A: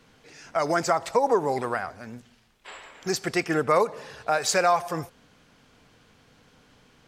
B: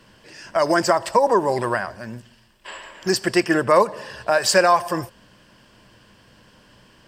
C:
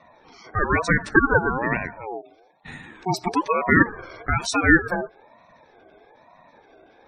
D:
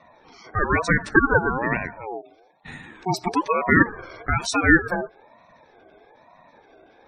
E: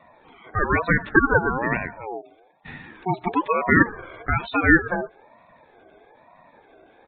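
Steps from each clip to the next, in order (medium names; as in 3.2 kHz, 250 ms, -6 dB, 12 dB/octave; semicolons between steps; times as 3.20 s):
rippled EQ curve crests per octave 1.3, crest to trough 8 dB; trim +5 dB
spectral gate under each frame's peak -15 dB strong; graphic EQ 125/250/500/1000/2000/8000 Hz +7/+4/-7/+9/-7/-7 dB; ring modulator with a swept carrier 680 Hz, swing 25%, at 1.1 Hz
no audible change
resampled via 8 kHz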